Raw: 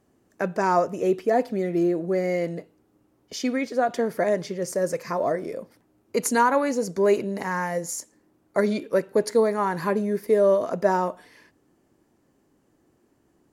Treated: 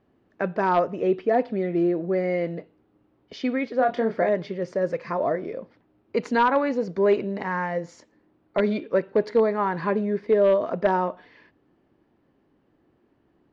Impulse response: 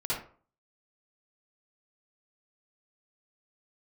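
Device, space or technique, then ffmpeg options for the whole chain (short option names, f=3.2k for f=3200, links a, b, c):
synthesiser wavefolder: -filter_complex "[0:a]asettb=1/sr,asplit=3[a][b][c];[a]atrim=end=3.774[d];[b]atrim=start=3.77:end=4.29,asetpts=PTS-STARTPTS,afade=t=in:d=0.004:c=qsin,afade=t=out:st=0.516:d=0.004:c=qsin,asplit=2[e][f];[f]adelay=27,volume=-6dB[g];[e][g]amix=inputs=2:normalize=0,atrim=end_sample=22932[h];[c]atrim=start=4.286[i];[d][h]acrossfade=d=0.004:c1=hsin:c2=qsin[j];[j][i]acrossfade=d=0.004:c1=qsin:c2=hsin,aeval=exprs='0.266*(abs(mod(val(0)/0.266+3,4)-2)-1)':c=same,lowpass=f=3.8k:w=0.5412,lowpass=f=3.8k:w=1.3066"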